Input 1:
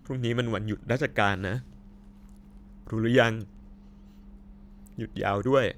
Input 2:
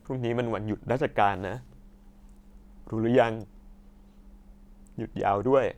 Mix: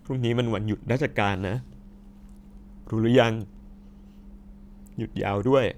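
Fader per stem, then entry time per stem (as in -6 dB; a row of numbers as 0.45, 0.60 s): -0.5, -2.0 dB; 0.00, 0.00 s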